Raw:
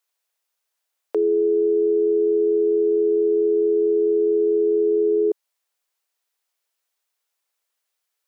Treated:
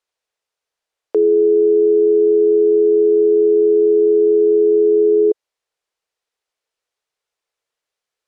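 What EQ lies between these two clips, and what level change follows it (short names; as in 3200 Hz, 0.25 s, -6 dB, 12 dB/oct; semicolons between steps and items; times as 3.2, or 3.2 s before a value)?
air absorption 58 m; low shelf 220 Hz +11 dB; bell 460 Hz +5 dB 0.54 oct; 0.0 dB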